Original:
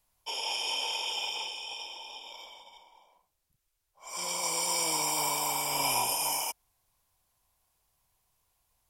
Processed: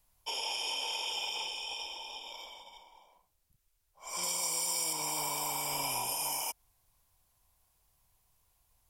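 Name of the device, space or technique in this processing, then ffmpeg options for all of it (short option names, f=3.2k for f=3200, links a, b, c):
ASMR close-microphone chain: -filter_complex "[0:a]asettb=1/sr,asplit=3[a][b][c];[a]atrim=end=4.234[d];[b]atrim=start=4.23:end=4.93,asetpts=PTS-STARTPTS,afade=t=in:d=0.004:c=qsin,afade=t=out:st=0.696:d=0.004:c=qsin,highshelf=f=4.8k:g=8[e];[c]atrim=start=4.926[f];[d][e]acrossfade=d=0.004:c1=hsin:c2=qsin[g];[g][f]acrossfade=d=0.004:c1=qsin:c2=hsin,lowshelf=f=130:g=7,acompressor=threshold=-33dB:ratio=4,highshelf=f=9.8k:g=3.5"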